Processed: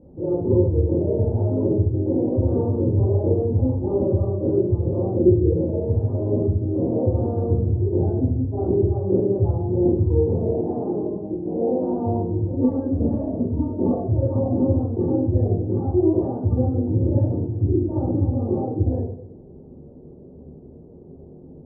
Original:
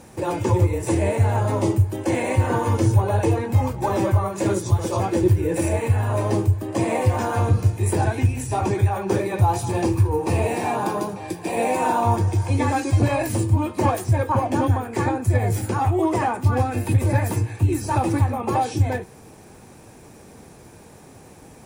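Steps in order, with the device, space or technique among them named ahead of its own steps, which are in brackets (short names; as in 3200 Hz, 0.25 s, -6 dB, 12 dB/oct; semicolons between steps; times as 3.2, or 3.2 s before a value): next room (LPF 500 Hz 24 dB/oct; reverb RT60 0.60 s, pre-delay 13 ms, DRR -7.5 dB); 12.64–14.08 comb 4.4 ms, depth 71%; gain -4.5 dB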